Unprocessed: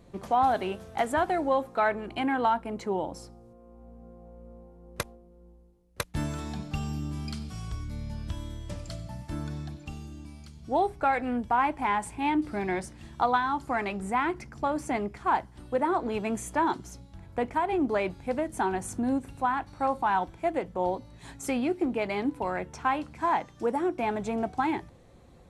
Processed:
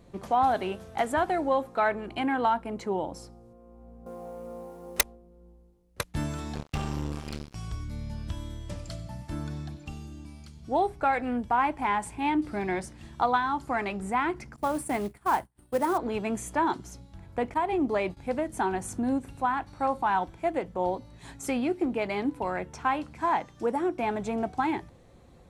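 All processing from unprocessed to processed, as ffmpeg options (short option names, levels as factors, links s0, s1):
-filter_complex "[0:a]asettb=1/sr,asplit=3[s0][s1][s2];[s0]atrim=end=4.064[s3];[s1]atrim=start=4.06:end=5.01,asetpts=PTS-STARTPTS,afade=t=in:d=0.004:c=qsin,afade=t=out:st=0.946:d=0.004:c=qsin,highpass=f=680:p=1,highshelf=f=5700:g=8,aeval=exprs='0.251*sin(PI/2*3.98*val(0)/0.251)':c=same[s4];[s2]atrim=start=5.006[s5];[s3][s4]acrossfade=d=0.004:c1=hsin:c2=qsin[s6];[s6][s5]acrossfade=d=0.004:c1=qsin:c2=hsin,asettb=1/sr,asplit=3[s7][s8][s9];[s7]atrim=end=6.554[s10];[s8]atrim=start=6.55:end=7.55,asetpts=PTS-STARTPTS,afade=t=in:d=0.004:c=qsin,afade=t=out:st=0.996:d=0.004:c=qsin,acrossover=split=4500[s11][s12];[s12]acompressor=threshold=0.00158:ratio=4:attack=1:release=60[s13];[s11][s13]amix=inputs=2:normalize=0,acrusher=bits=4:mix=0:aa=0.5,asplit=2[s14][s15];[s15]adelay=28,volume=0.251[s16];[s14][s16]amix=inputs=2:normalize=0,atrim=end_sample=44100[s17];[s9]atrim=start=7.546[s18];[s10][s17]acrossfade=d=0.004:c1=hsin:c2=qsin[s19];[s19][s18]acrossfade=d=0.004:c1=qsin:c2=hsin,asettb=1/sr,asplit=3[s20][s21][s22];[s20]atrim=end=14.564[s23];[s21]atrim=start=14.56:end=15.98,asetpts=PTS-STARTPTS,afade=t=in:d=0.004:c=qsin,afade=t=out:st=1.416:d=0.004:c=qsin,agate=range=0.0224:threshold=0.0141:ratio=3:release=100:detection=peak,highshelf=f=7600:t=q:w=3:g=8,acrusher=bits=5:mode=log:mix=0:aa=0.000001[s24];[s22]atrim=start=15.976[s25];[s23][s24]acrossfade=d=0.004:c1=hsin:c2=qsin[s26];[s26][s25]acrossfade=d=0.004:c1=qsin:c2=hsin,asettb=1/sr,asplit=3[s27][s28][s29];[s27]atrim=end=17.544[s30];[s28]atrim=start=17.54:end=18.17,asetpts=PTS-STARTPTS,afade=t=in:d=0.004:c=qsin,afade=t=out:st=0.626:d=0.004:c=qsin,agate=range=0.0224:threshold=0.0141:ratio=3:release=100:detection=peak,bandreject=f=1500:w=9.2[s31];[s29]atrim=start=18.166[s32];[s30][s31]acrossfade=d=0.004:c1=hsin:c2=qsin[s33];[s33][s32]acrossfade=d=0.004:c1=qsin:c2=hsin"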